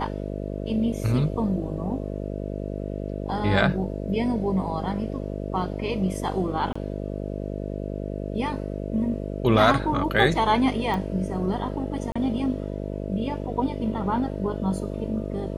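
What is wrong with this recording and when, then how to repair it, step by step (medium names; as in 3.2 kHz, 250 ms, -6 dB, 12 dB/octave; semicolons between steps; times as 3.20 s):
buzz 50 Hz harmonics 13 -31 dBFS
6.73–6.75 s: dropout 25 ms
10.94 s: pop -17 dBFS
12.12–12.15 s: dropout 35 ms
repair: de-click; de-hum 50 Hz, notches 13; interpolate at 6.73 s, 25 ms; interpolate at 12.12 s, 35 ms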